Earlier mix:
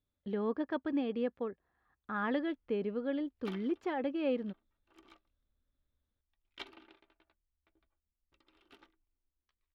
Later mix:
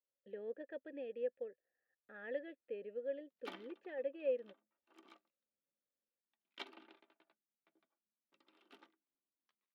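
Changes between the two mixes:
speech: add vowel filter e; background: add rippled Chebyshev high-pass 160 Hz, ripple 3 dB

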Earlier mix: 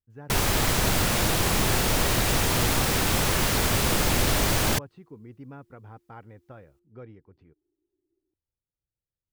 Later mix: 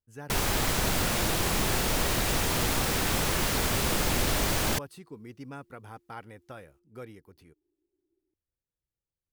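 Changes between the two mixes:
speech: remove tape spacing loss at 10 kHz 36 dB; first sound -3.5 dB; master: add bell 110 Hz -3.5 dB 0.57 oct

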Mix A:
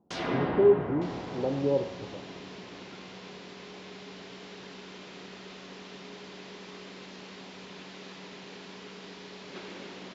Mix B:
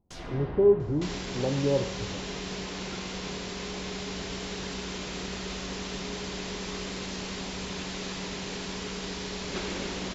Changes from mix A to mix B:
first sound -10.0 dB; second sound +8.0 dB; master: remove BPF 180–4300 Hz

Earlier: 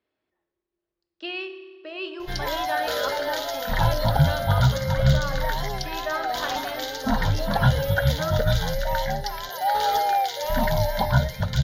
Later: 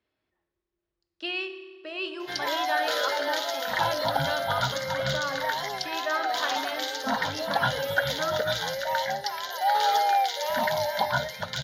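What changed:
speech: remove BPF 400–5200 Hz; master: add weighting filter A

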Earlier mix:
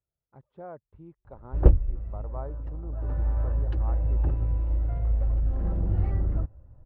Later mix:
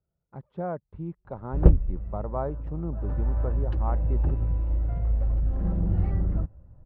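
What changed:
speech +9.0 dB; master: add bell 180 Hz +8 dB 0.46 oct

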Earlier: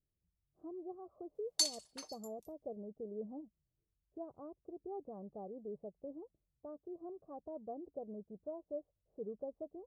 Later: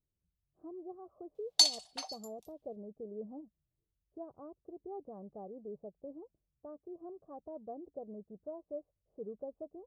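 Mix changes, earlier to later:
background: add resonant high-pass 740 Hz, resonance Q 9.1; master: add bell 3500 Hz +11.5 dB 1.3 oct

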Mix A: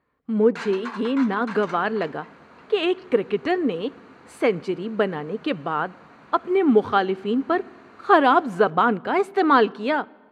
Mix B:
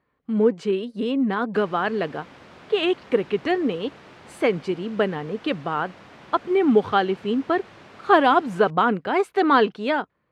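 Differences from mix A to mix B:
first sound: muted; second sound +5.5 dB; reverb: off

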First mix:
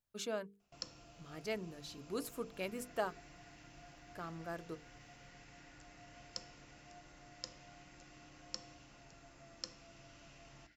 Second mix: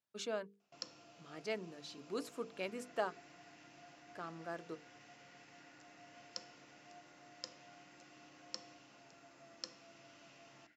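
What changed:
second sound: add LPF 2800 Hz; master: add BPF 210–6900 Hz

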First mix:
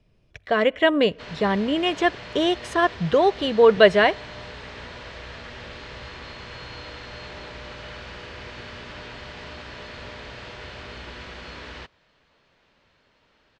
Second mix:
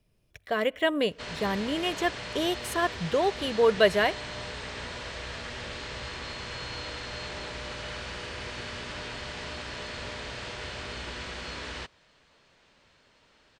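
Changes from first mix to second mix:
speech -7.5 dB; master: remove air absorption 110 m

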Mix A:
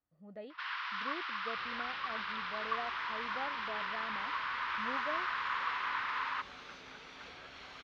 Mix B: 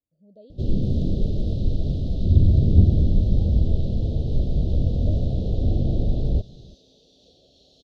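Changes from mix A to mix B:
first sound: remove Chebyshev band-pass 1000–5400 Hz, order 4; master: add elliptic band-stop 600–3700 Hz, stop band 40 dB

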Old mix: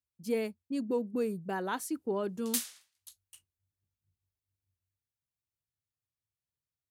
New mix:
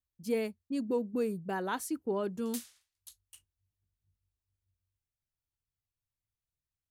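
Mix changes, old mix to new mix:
background -10.0 dB; master: remove HPF 92 Hz 12 dB/oct

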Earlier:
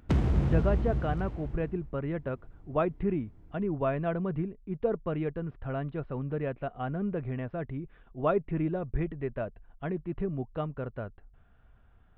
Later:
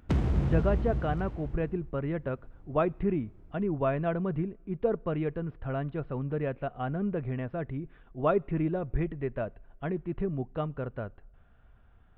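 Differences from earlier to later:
speech: send on; background: send -10.5 dB

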